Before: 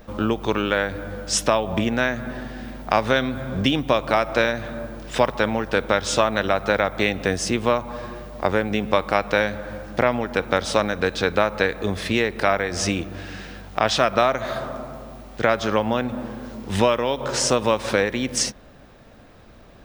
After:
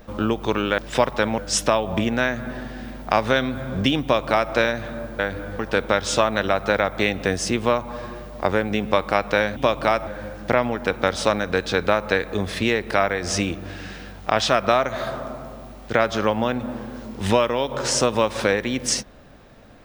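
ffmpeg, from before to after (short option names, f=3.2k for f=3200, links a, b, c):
-filter_complex "[0:a]asplit=7[a][b][c][d][e][f][g];[a]atrim=end=0.782[h];[b]atrim=start=4.988:end=5.592[i];[c]atrim=start=1.178:end=4.992[j];[d]atrim=start=0.778:end=1.182[k];[e]atrim=start=5.588:end=9.562[l];[f]atrim=start=3.818:end=4.332[m];[g]atrim=start=9.558[n];[h][i]acrossfade=d=0.004:c1=hsin:c2=hsin[o];[o][j]acrossfade=d=0.004:c1=hsin:c2=hsin[p];[p][k]acrossfade=d=0.004:c1=hsin:c2=hsin[q];[q][l]acrossfade=d=0.004:c1=hsin:c2=hsin[r];[r][m]acrossfade=d=0.004:c1=hsin:c2=hsin[s];[s][n]acrossfade=d=0.004:c1=hsin:c2=hsin"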